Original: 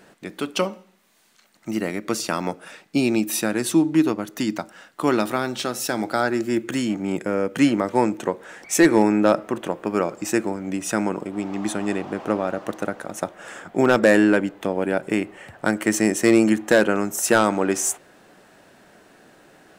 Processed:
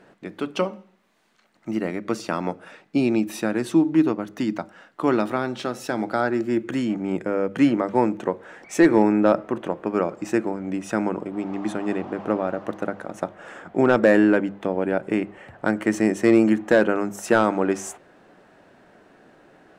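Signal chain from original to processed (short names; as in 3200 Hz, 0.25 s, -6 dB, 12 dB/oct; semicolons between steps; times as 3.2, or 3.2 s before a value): LPF 1800 Hz 6 dB/oct; notches 50/100/150/200 Hz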